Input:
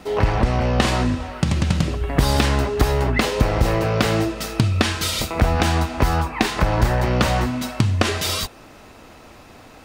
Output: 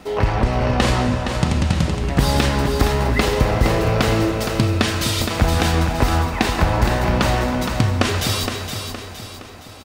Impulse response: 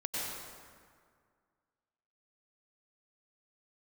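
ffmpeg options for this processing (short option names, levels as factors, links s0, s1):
-filter_complex "[0:a]aecho=1:1:466|932|1398|1864|2330:0.447|0.197|0.0865|0.0381|0.0167,asplit=2[s0][s1];[1:a]atrim=start_sample=2205,adelay=37[s2];[s1][s2]afir=irnorm=-1:irlink=0,volume=0.2[s3];[s0][s3]amix=inputs=2:normalize=0"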